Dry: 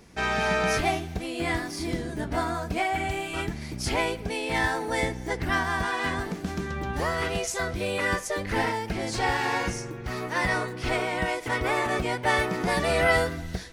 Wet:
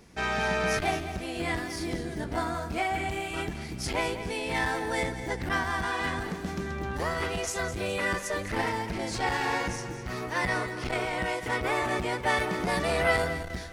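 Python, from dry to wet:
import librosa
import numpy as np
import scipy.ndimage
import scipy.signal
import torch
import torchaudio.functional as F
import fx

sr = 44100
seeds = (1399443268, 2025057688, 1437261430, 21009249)

p1 = x + fx.echo_feedback(x, sr, ms=209, feedback_pct=46, wet_db=-12, dry=0)
p2 = fx.transformer_sat(p1, sr, knee_hz=540.0)
y = p2 * librosa.db_to_amplitude(-2.0)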